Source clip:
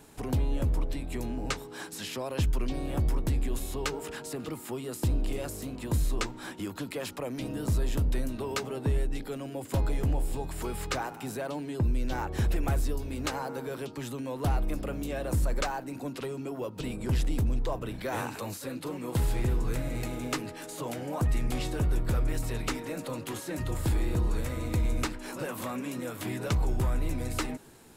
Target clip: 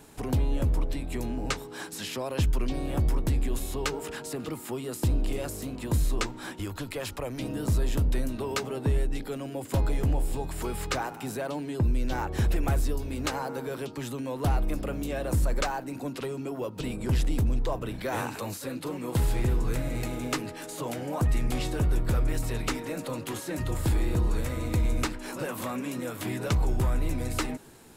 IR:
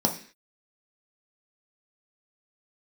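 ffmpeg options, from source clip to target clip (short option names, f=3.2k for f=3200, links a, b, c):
-filter_complex "[0:a]asplit=3[a][b][c];[a]afade=t=out:st=6.58:d=0.02[d];[b]asubboost=boost=9:cutoff=65,afade=t=in:st=6.58:d=0.02,afade=t=out:st=7.38:d=0.02[e];[c]afade=t=in:st=7.38:d=0.02[f];[d][e][f]amix=inputs=3:normalize=0,volume=2dB"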